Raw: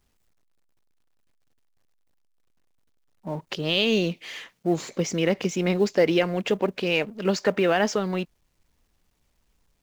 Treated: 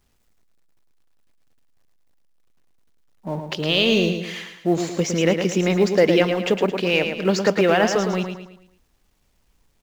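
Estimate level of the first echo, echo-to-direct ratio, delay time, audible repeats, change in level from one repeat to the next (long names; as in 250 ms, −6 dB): −7.0 dB, −6.0 dB, 110 ms, 4, −7.5 dB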